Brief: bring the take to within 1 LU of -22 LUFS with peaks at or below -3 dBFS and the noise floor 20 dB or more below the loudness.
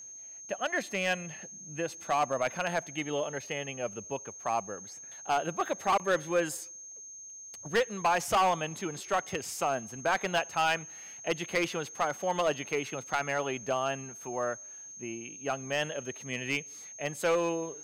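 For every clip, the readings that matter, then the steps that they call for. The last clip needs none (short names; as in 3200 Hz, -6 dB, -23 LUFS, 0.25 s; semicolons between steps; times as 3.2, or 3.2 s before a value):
clipped 0.8%; flat tops at -21.0 dBFS; steady tone 6400 Hz; tone level -44 dBFS; loudness -32.0 LUFS; peak -21.0 dBFS; loudness target -22.0 LUFS
-> clip repair -21 dBFS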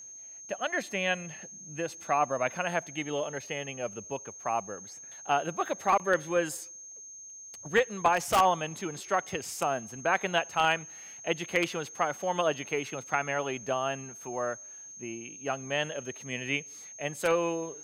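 clipped 0.0%; steady tone 6400 Hz; tone level -44 dBFS
-> notch 6400 Hz, Q 30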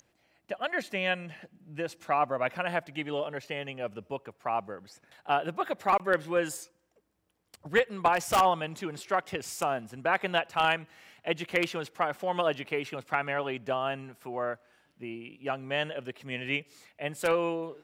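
steady tone none; loudness -30.5 LUFS; peak -12.0 dBFS; loudness target -22.0 LUFS
-> gain +8.5 dB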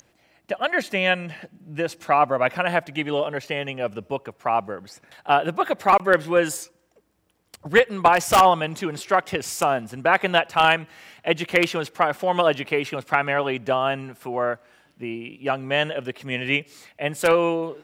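loudness -22.0 LUFS; peak -3.5 dBFS; noise floor -65 dBFS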